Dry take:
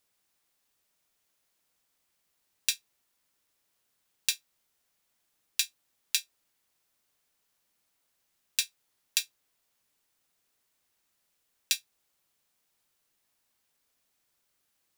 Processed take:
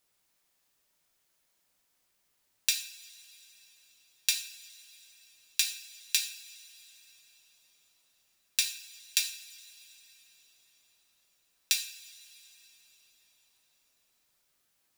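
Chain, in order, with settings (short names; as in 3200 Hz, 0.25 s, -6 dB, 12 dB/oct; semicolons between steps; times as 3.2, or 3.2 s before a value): two-slope reverb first 0.51 s, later 4.4 s, from -20 dB, DRR 3 dB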